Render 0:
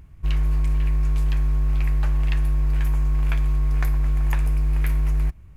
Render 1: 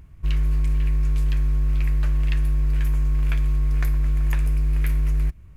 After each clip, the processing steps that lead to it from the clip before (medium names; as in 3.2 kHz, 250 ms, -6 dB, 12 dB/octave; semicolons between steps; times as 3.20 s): band-stop 810 Hz, Q 12; dynamic bell 860 Hz, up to -6 dB, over -51 dBFS, Q 1.3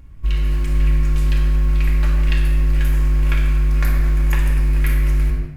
simulated room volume 1400 m³, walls mixed, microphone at 2.3 m; level rider gain up to 5 dB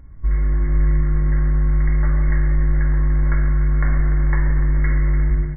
brick-wall FIR low-pass 2.2 kHz; feedback delay 294 ms, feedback 45%, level -11 dB